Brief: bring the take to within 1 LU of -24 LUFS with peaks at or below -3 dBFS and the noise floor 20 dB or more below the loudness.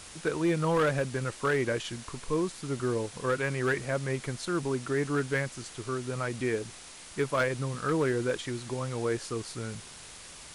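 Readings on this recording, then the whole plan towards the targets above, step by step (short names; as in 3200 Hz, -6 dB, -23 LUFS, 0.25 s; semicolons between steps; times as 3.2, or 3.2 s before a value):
clipped 0.6%; flat tops at -20.5 dBFS; noise floor -47 dBFS; noise floor target -51 dBFS; loudness -31.0 LUFS; peak -20.5 dBFS; loudness target -24.0 LUFS
-> clip repair -20.5 dBFS; denoiser 6 dB, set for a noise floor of -47 dBFS; gain +7 dB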